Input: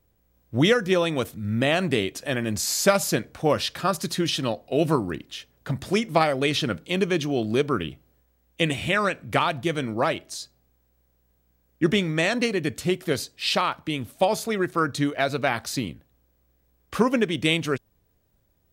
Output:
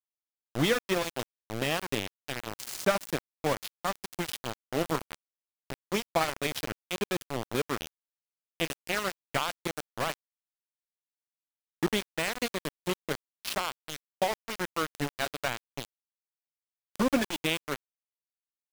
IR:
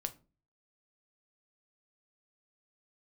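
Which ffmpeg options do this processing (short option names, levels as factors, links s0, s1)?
-filter_complex "[0:a]asettb=1/sr,asplit=3[s0][s1][s2];[s0]atrim=end=4.814[s3];[s1]atrim=start=4.81:end=5.79,asetpts=PTS-STARTPTS,afade=t=in:d=0.004:c=qsin,afade=t=out:st=0.976:d=0.004:c=qsin,bandreject=f=60:t=h:w=6,bandreject=f=120:t=h:w=6,bandreject=f=180:t=h:w=6,bandreject=f=240:t=h:w=6,bandreject=f=300:t=h:w=6,bandreject=f=360:t=h:w=6,bandreject=f=420:t=h:w=6,bandreject=f=480:t=h:w=6,bandreject=f=540:t=h:w=6[s4];[s2]atrim=start=5.786[s5];[s3][s4]acrossfade=d=0.004:c1=hsin:c2=qsin[s6];[s6][s5]acrossfade=d=0.004:c1=qsin:c2=hsin,asettb=1/sr,asplit=3[s7][s8][s9];[s7]atrim=end=16.984[s10];[s8]atrim=start=16.98:end=17.43,asetpts=PTS-STARTPTS,afade=t=in:d=0.004:c=qsin,afade=t=out:st=0.446:d=0.004:c=qsin,aecho=1:1:3.5:0.8,atrim=end_sample=19845[s11];[s9]atrim=start=17.426[s12];[s10][s11]acrossfade=d=0.004:c1=hsin:c2=qsin[s13];[s13][s12]acrossfade=d=0.004:c1=qsin:c2=hsin,aeval=exprs='val(0)*gte(abs(val(0)),0.106)':c=same,volume=0.473"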